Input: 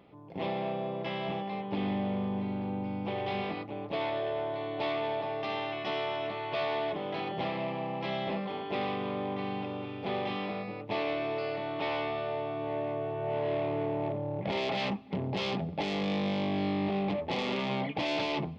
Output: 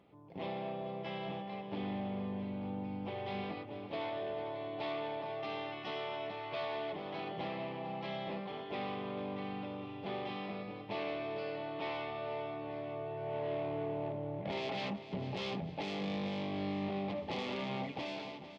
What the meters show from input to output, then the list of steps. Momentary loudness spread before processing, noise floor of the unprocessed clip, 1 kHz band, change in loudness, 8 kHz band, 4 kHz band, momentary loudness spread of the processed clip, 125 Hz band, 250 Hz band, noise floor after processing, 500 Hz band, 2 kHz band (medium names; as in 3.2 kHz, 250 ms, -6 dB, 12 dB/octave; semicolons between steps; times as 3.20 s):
4 LU, -40 dBFS, -6.5 dB, -6.5 dB, no reading, -7.0 dB, 4 LU, -6.5 dB, -6.5 dB, -48 dBFS, -6.5 dB, -7.0 dB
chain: fade out at the end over 0.76 s; feedback delay 449 ms, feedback 53%, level -13 dB; trim -6.5 dB; Vorbis 64 kbps 48 kHz